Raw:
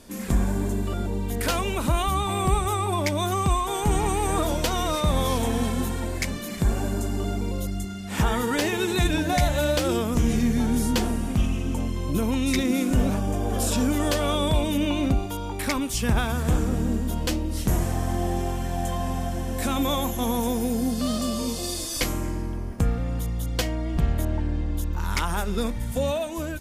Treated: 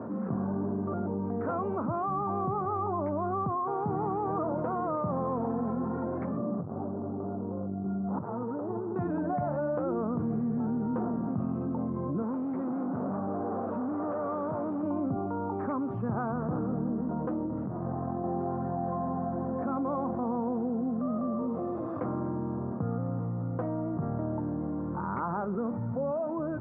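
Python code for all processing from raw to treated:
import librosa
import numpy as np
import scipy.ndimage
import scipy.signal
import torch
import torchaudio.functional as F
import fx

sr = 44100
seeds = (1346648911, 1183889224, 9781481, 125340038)

y = fx.chain(x, sr, fx.lowpass(hz=1100.0, slope=24),
    fx.overload_stage(gain_db=22.0),
    fx.over_compress(threshold_db=-32.0, ratio=-0.5), at=(6.37, 8.96))
y = fx.chain(y, sr, fx.low_shelf(hz=130.0, db=-11.5),
    fx.overload_stage(gain_db=28.5), at=(12.22, 14.83))
y = fx.chain(y, sr, fx.cheby_ripple(hz=7700.0, ripple_db=3),
    fx.high_shelf(hz=2400.0, db=-9.5),
    fx.over_compress(threshold_db=-31.0, ratio=-1.0), at=(17.46, 18.24))
y = scipy.signal.sosfilt(scipy.signal.cheby1(4, 1.0, [110.0, 1300.0], 'bandpass', fs=sr, output='sos'), y)
y = fx.env_flatten(y, sr, amount_pct=70)
y = F.gain(torch.from_numpy(y), -8.5).numpy()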